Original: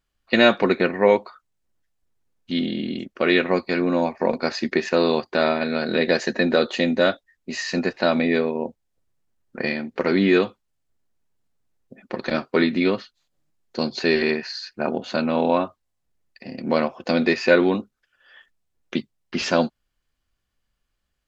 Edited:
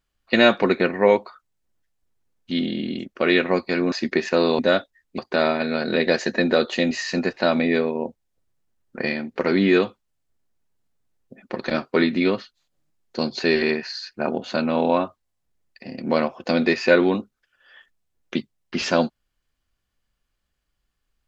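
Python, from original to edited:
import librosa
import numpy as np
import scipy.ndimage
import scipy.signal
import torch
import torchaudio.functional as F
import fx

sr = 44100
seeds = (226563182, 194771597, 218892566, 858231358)

y = fx.edit(x, sr, fx.cut(start_s=3.92, length_s=0.6),
    fx.move(start_s=6.92, length_s=0.59, to_s=5.19), tone=tone)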